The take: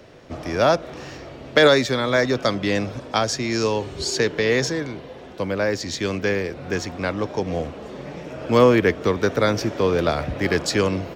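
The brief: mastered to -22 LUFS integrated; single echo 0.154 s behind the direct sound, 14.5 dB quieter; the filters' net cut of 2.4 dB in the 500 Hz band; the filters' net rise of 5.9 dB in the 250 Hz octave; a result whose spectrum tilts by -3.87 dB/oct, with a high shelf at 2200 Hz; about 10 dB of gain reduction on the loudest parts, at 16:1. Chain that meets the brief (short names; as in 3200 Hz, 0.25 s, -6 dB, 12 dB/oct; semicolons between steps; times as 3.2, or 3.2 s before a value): bell 250 Hz +9 dB; bell 500 Hz -6 dB; high shelf 2200 Hz +8.5 dB; compressor 16:1, threshold -18 dBFS; echo 0.154 s -14.5 dB; gain +2 dB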